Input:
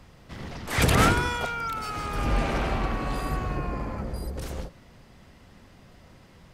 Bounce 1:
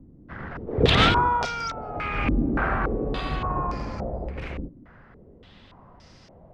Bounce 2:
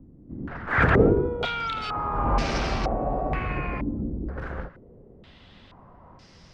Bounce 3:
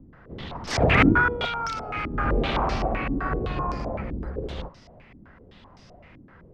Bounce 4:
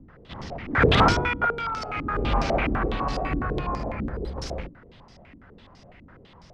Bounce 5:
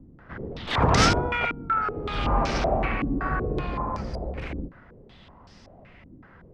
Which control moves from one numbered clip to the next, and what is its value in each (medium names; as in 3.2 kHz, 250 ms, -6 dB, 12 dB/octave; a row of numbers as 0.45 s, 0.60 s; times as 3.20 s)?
step-sequenced low-pass, rate: 3.5 Hz, 2.1 Hz, 7.8 Hz, 12 Hz, 5.3 Hz